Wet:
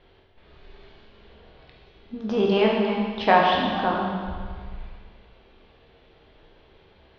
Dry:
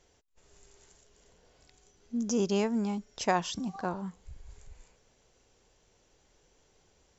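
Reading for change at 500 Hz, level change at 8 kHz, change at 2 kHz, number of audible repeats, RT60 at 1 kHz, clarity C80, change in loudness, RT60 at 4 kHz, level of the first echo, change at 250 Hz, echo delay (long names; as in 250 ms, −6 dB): +10.5 dB, can't be measured, +13.0 dB, no echo audible, 1.8 s, 2.5 dB, +9.0 dB, 1.8 s, no echo audible, +5.5 dB, no echo audible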